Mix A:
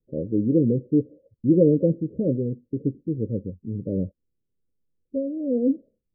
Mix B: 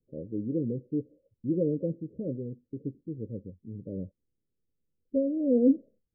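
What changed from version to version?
first voice -10.5 dB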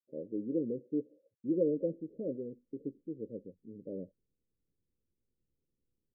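first voice: add HPF 300 Hz 12 dB/oct; second voice: entry +1.60 s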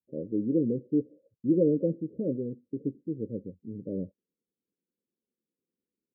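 first voice: add tilt -4.5 dB/oct; second voice: add brick-wall FIR high-pass 170 Hz

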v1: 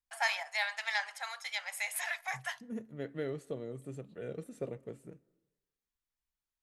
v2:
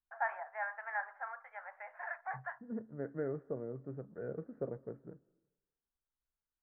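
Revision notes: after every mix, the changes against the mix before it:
master: add elliptic low-pass 1600 Hz, stop band 60 dB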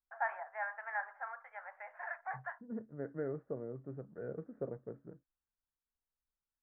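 reverb: off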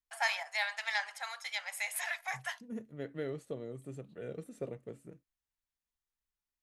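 master: remove elliptic low-pass 1600 Hz, stop band 60 dB

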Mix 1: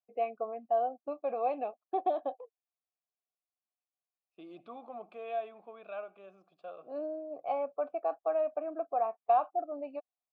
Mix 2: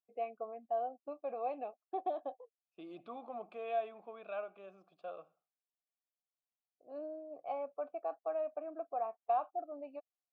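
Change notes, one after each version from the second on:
first voice -6.5 dB; second voice: entry -1.60 s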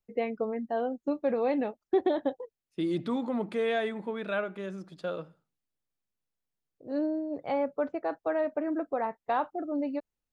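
master: remove vowel filter a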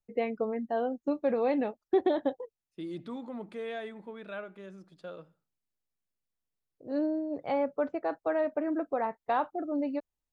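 second voice -9.0 dB

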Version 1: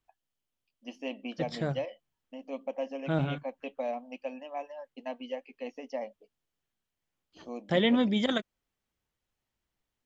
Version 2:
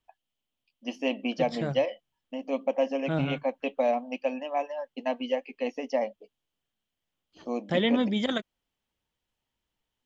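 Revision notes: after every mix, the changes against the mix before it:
first voice +8.5 dB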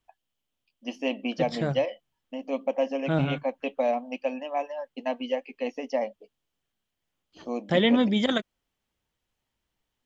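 second voice +3.5 dB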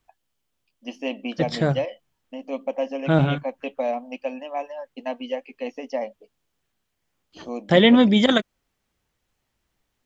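second voice +7.0 dB

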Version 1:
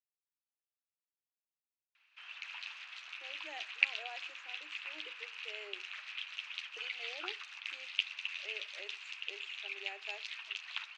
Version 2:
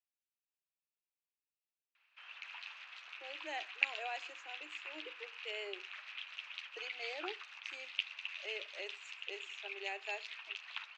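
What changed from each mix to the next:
speech +5.5 dB; background: add tilt -2.5 dB/oct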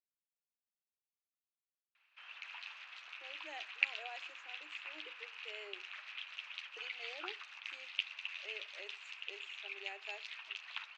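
speech -6.5 dB

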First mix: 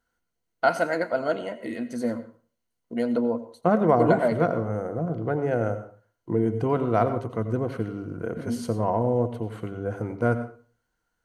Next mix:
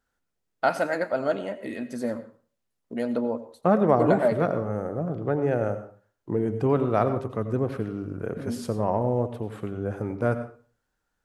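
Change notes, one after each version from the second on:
master: remove ripple EQ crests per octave 1.9, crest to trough 7 dB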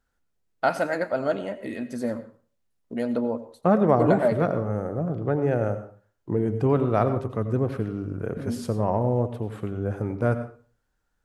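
master: add low shelf 110 Hz +7.5 dB

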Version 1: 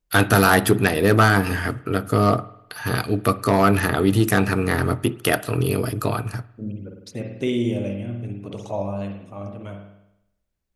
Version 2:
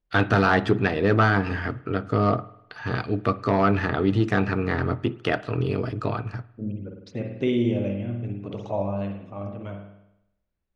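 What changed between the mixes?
first voice -3.5 dB; master: add Gaussian blur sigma 1.9 samples

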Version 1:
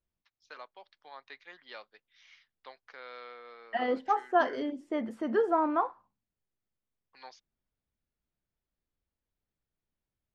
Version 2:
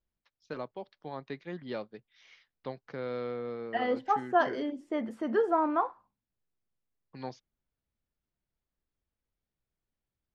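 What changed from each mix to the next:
first voice: remove HPF 1100 Hz 12 dB/oct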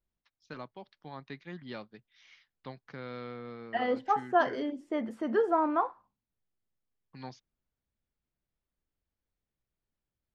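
first voice: add bell 490 Hz -8.5 dB 1.3 oct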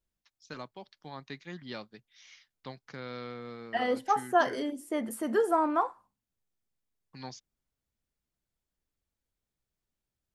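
master: remove air absorption 190 m

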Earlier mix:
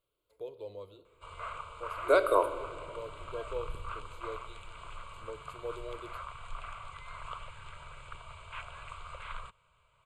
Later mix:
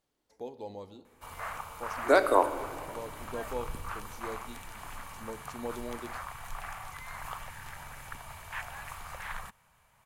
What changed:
background: remove steep low-pass 8500 Hz 72 dB/oct; master: remove fixed phaser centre 1200 Hz, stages 8

